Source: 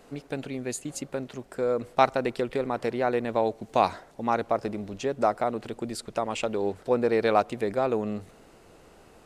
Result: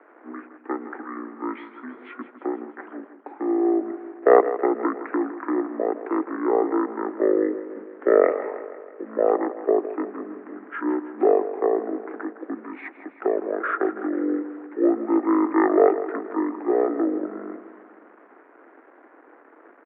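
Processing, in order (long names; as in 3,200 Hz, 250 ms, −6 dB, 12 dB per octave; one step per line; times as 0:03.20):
high-shelf EQ 2,800 Hz +11.5 dB
bit-depth reduction 8 bits, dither none
single-sideband voice off tune +240 Hz 360–3,600 Hz
on a send: repeating echo 75 ms, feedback 59%, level −13 dB
on the sum: change of speed 0.466×
level +3.5 dB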